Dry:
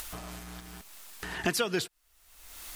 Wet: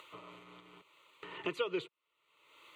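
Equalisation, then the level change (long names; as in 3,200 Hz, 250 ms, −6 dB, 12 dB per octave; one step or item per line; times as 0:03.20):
high-pass filter 150 Hz 24 dB per octave
high-frequency loss of the air 180 metres
phaser with its sweep stopped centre 1,100 Hz, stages 8
−2.5 dB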